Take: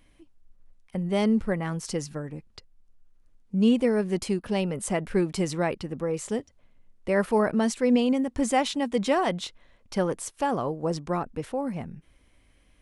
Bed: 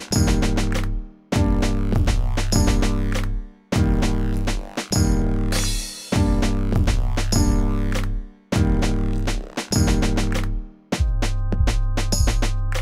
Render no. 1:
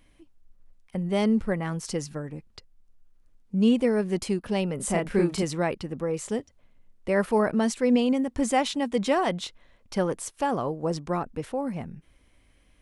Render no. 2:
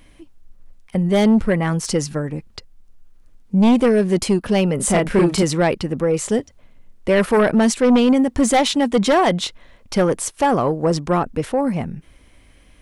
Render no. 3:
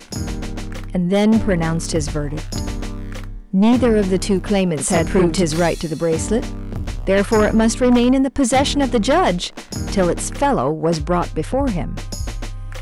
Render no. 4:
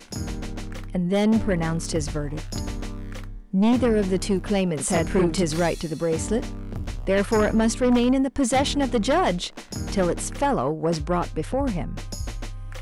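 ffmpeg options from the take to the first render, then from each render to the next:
-filter_complex "[0:a]asettb=1/sr,asplit=3[s0][s1][s2];[s0]atrim=end=4.764[s3];[s1]atrim=start=4.76:end=5.43,asetpts=PTS-STARTPTS,afade=t=in:d=0.004:c=qsin,afade=t=out:st=0.666:d=0.004:c=qsin,asplit=2[s4][s5];[s5]adelay=35,volume=0.75[s6];[s4][s6]amix=inputs=2:normalize=0,atrim=end_sample=29547[s7];[s2]atrim=start=5.426[s8];[s3][s7]acrossfade=d=0.004:c1=hsin:c2=qsin[s9];[s9][s8]acrossfade=d=0.004:c1=qsin:c2=hsin"
-af "aeval=exprs='0.335*sin(PI/2*2.24*val(0)/0.335)':c=same"
-filter_complex "[1:a]volume=0.447[s0];[0:a][s0]amix=inputs=2:normalize=0"
-af "volume=0.531"

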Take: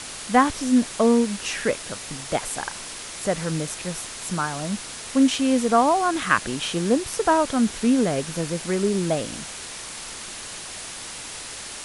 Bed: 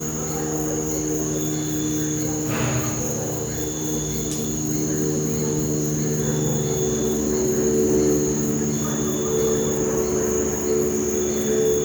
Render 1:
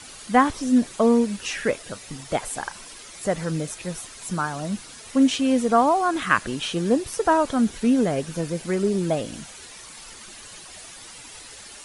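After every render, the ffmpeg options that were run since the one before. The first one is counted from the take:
-af "afftdn=nr=10:nf=-36"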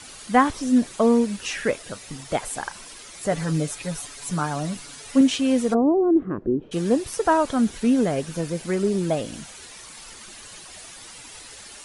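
-filter_complex "[0:a]asettb=1/sr,asplit=3[s0][s1][s2];[s0]atrim=end=3.314[s3];[s1]atrim=start=3.31:end=5.21,asetpts=PTS-STARTPTS,afade=t=in:d=0.004:c=qsin,afade=t=out:st=1.896:d=0.004:c=qsin,aecho=1:1:7:0.67,atrim=end_sample=83790[s4];[s2]atrim=start=5.206[s5];[s3][s4]acrossfade=d=0.004:c1=hsin:c2=qsin[s6];[s6][s5]acrossfade=d=0.004:c1=qsin:c2=hsin,asplit=3[s7][s8][s9];[s7]afade=t=out:st=5.73:d=0.02[s10];[s8]lowpass=f=370:t=q:w=3.5,afade=t=in:st=5.73:d=0.02,afade=t=out:st=6.71:d=0.02[s11];[s9]afade=t=in:st=6.71:d=0.02[s12];[s10][s11][s12]amix=inputs=3:normalize=0"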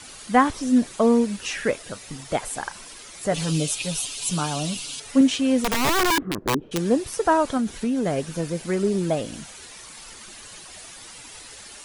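-filter_complex "[0:a]asettb=1/sr,asplit=3[s0][s1][s2];[s0]atrim=end=3.344[s3];[s1]atrim=start=3.34:end=5,asetpts=PTS-STARTPTS,afade=t=in:d=0.004:c=qsin,afade=t=out:st=1.656:d=0.004:c=qsin,highshelf=f=2300:t=q:w=3:g=6.5[s4];[s2]atrim=start=4.996[s5];[s3][s4]acrossfade=d=0.004:c1=hsin:c2=qsin[s6];[s6][s5]acrossfade=d=0.004:c1=qsin:c2=hsin,asettb=1/sr,asplit=3[s7][s8][s9];[s7]atrim=end=5.624[s10];[s8]atrim=start=5.62:end=6.78,asetpts=PTS-STARTPTS,afade=t=in:d=0.004:c=qsin,afade=t=out:st=1.156:d=0.004:c=qsin,aeval=exprs='(mod(6.31*val(0)+1,2)-1)/6.31':c=same[s11];[s9]atrim=start=6.776[s12];[s10][s11]acrossfade=d=0.004:c1=hsin:c2=qsin[s13];[s13][s12]acrossfade=d=0.004:c1=qsin:c2=hsin,asettb=1/sr,asplit=3[s14][s15][s16];[s14]atrim=end=7.574[s17];[s15]atrim=start=7.57:end=8.06,asetpts=PTS-STARTPTS,afade=t=in:d=0.004:c=qsin,afade=t=out:st=0.486:d=0.004:c=qsin,acompressor=threshold=0.1:ratio=6:attack=3.2:release=140:knee=1:detection=peak[s18];[s16]atrim=start=8.056[s19];[s17][s18]acrossfade=d=0.004:c1=hsin:c2=qsin[s20];[s20][s19]acrossfade=d=0.004:c1=qsin:c2=hsin"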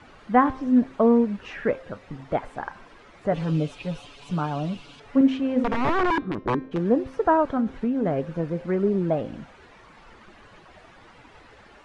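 -af "lowpass=1600,bandreject=f=263.1:t=h:w=4,bandreject=f=526.2:t=h:w=4,bandreject=f=789.3:t=h:w=4,bandreject=f=1052.4:t=h:w=4,bandreject=f=1315.5:t=h:w=4,bandreject=f=1578.6:t=h:w=4,bandreject=f=1841.7:t=h:w=4,bandreject=f=2104.8:t=h:w=4,bandreject=f=2367.9:t=h:w=4,bandreject=f=2631:t=h:w=4,bandreject=f=2894.1:t=h:w=4,bandreject=f=3157.2:t=h:w=4,bandreject=f=3420.3:t=h:w=4,bandreject=f=3683.4:t=h:w=4,bandreject=f=3946.5:t=h:w=4,bandreject=f=4209.6:t=h:w=4,bandreject=f=4472.7:t=h:w=4,bandreject=f=4735.8:t=h:w=4,bandreject=f=4998.9:t=h:w=4,bandreject=f=5262:t=h:w=4,bandreject=f=5525.1:t=h:w=4,bandreject=f=5788.2:t=h:w=4,bandreject=f=6051.3:t=h:w=4"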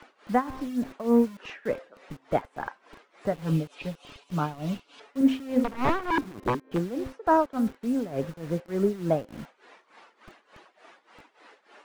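-filter_complex "[0:a]tremolo=f=3.4:d=0.87,acrossover=split=270|850[s0][s1][s2];[s0]acrusher=bits=7:mix=0:aa=0.000001[s3];[s3][s1][s2]amix=inputs=3:normalize=0"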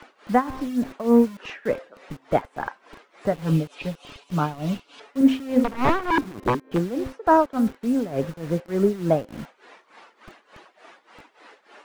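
-af "volume=1.68"

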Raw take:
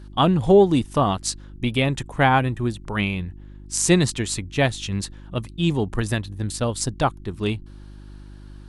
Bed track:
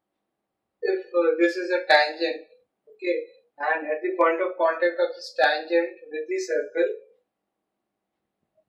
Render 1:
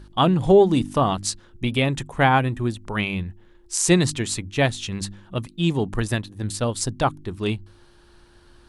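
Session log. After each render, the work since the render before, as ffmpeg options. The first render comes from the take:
-af "bandreject=f=50:t=h:w=4,bandreject=f=100:t=h:w=4,bandreject=f=150:t=h:w=4,bandreject=f=200:t=h:w=4,bandreject=f=250:t=h:w=4,bandreject=f=300:t=h:w=4"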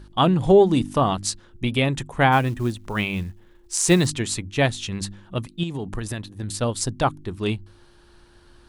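-filter_complex "[0:a]asettb=1/sr,asplit=3[s0][s1][s2];[s0]atrim=end=2.324[s3];[s1]atrim=start=2.32:end=4.07,asetpts=PTS-STARTPTS,afade=t=in:d=0.004:c=qsin,afade=t=out:st=1.746:d=0.004:c=qsin,acrusher=bits=7:mode=log:mix=0:aa=0.000001[s4];[s2]atrim=start=4.066[s5];[s3][s4]acrossfade=d=0.004:c1=hsin:c2=qsin[s6];[s6][s5]acrossfade=d=0.004:c1=qsin:c2=hsin,asettb=1/sr,asplit=3[s7][s8][s9];[s7]atrim=end=5.634[s10];[s8]atrim=start=5.63:end=6.55,asetpts=PTS-STARTPTS,afade=t=in:d=0.004:c=qsin,afade=t=out:st=0.916:d=0.004:c=qsin,acompressor=threshold=0.0631:ratio=12:attack=3.2:release=140:knee=1:detection=peak[s11];[s9]atrim=start=6.546[s12];[s10][s11]acrossfade=d=0.004:c1=hsin:c2=qsin[s13];[s13][s12]acrossfade=d=0.004:c1=qsin:c2=hsin"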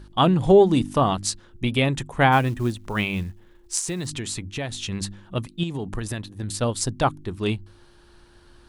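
-filter_complex "[0:a]asettb=1/sr,asplit=3[s0][s1][s2];[s0]atrim=end=3.794[s3];[s1]atrim=start=3.79:end=4.72,asetpts=PTS-STARTPTS,afade=t=in:d=0.004:c=qsin,afade=t=out:st=0.926:d=0.004:c=qsin,acompressor=threshold=0.0501:ratio=5:attack=3.2:release=140:knee=1:detection=peak[s4];[s2]atrim=start=4.716[s5];[s3][s4]acrossfade=d=0.004:c1=hsin:c2=qsin[s6];[s6][s5]acrossfade=d=0.004:c1=qsin:c2=hsin"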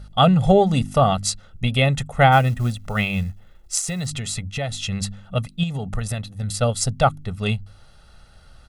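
-af "equalizer=f=160:t=o:w=0.77:g=2,aecho=1:1:1.5:0.93"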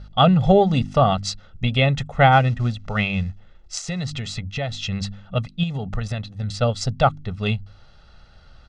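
-af "lowpass=f=5700:w=0.5412,lowpass=f=5700:w=1.3066"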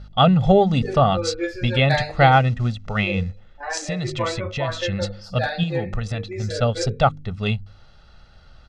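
-filter_complex "[1:a]volume=0.531[s0];[0:a][s0]amix=inputs=2:normalize=0"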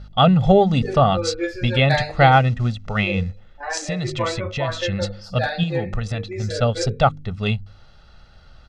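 -af "volume=1.12,alimiter=limit=0.794:level=0:latency=1"

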